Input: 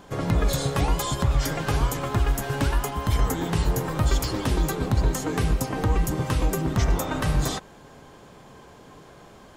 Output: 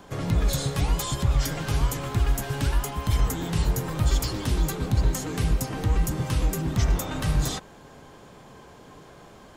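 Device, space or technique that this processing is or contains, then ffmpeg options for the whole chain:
one-band saturation: -filter_complex "[0:a]acrossover=split=210|2500[s0][s1][s2];[s1]asoftclip=type=tanh:threshold=0.0251[s3];[s0][s3][s2]amix=inputs=3:normalize=0"

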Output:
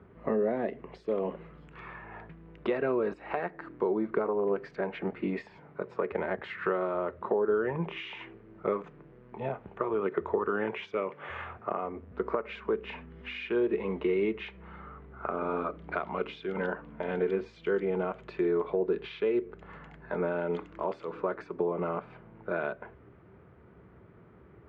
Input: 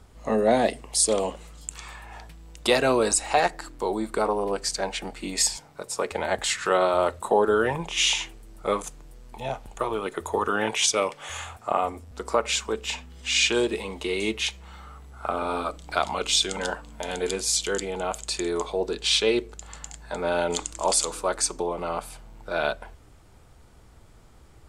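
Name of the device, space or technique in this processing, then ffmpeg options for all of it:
bass amplifier: -af "acompressor=threshold=0.0398:ratio=5,highpass=f=74:w=0.5412,highpass=f=74:w=1.3066,equalizer=f=86:t=q:w=4:g=-5,equalizer=f=180:t=q:w=4:g=7,equalizer=f=390:t=q:w=4:g=8,equalizer=f=800:t=q:w=4:g=-6,lowpass=f=2100:w=0.5412,lowpass=f=2100:w=1.3066"

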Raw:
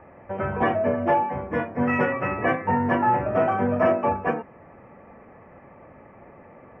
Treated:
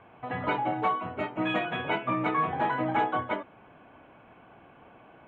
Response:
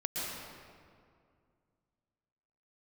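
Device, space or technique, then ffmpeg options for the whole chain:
nightcore: -af "asetrate=56889,aresample=44100,volume=0.501"

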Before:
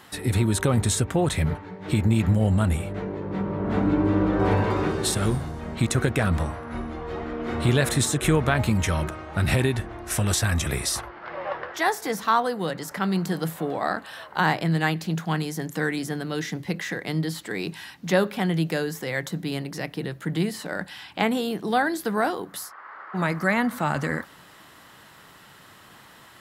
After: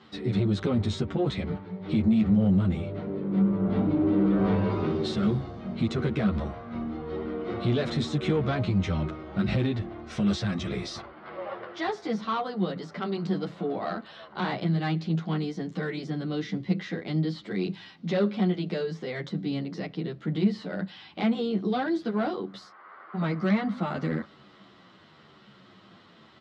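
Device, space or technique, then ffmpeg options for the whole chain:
barber-pole flanger into a guitar amplifier: -filter_complex "[0:a]asplit=2[s0][s1];[s1]adelay=10.1,afreqshift=-0.99[s2];[s0][s2]amix=inputs=2:normalize=1,asoftclip=type=tanh:threshold=0.106,highpass=76,equalizer=f=200:t=q:w=4:g=9,equalizer=f=360:t=q:w=4:g=4,equalizer=f=910:t=q:w=4:g=-6,equalizer=f=1700:t=q:w=4:g=-8,equalizer=f=2600:t=q:w=4:g=-4,lowpass=f=4500:w=0.5412,lowpass=f=4500:w=1.3066"

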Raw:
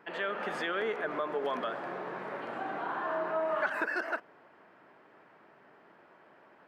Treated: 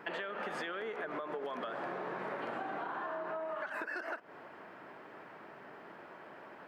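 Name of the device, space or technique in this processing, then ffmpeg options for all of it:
serial compression, leveller first: -af "acompressor=threshold=0.0141:ratio=6,acompressor=threshold=0.00631:ratio=6,volume=2.37"

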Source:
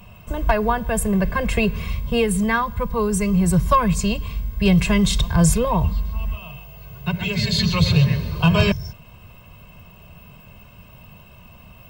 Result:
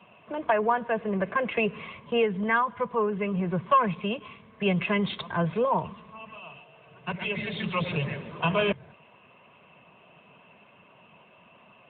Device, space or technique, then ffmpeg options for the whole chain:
telephone: -af "highpass=310,lowpass=3100,asoftclip=type=tanh:threshold=0.316,volume=0.841" -ar 8000 -c:a libopencore_amrnb -b:a 10200

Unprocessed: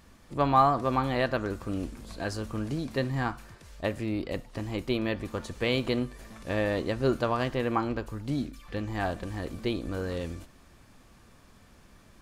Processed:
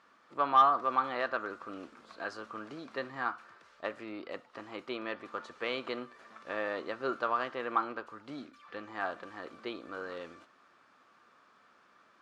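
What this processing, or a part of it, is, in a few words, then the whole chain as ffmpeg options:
intercom: -af "highpass=370,lowpass=4500,equalizer=f=1300:t=o:w=0.59:g=11.5,asoftclip=type=tanh:threshold=0.447,volume=0.473"

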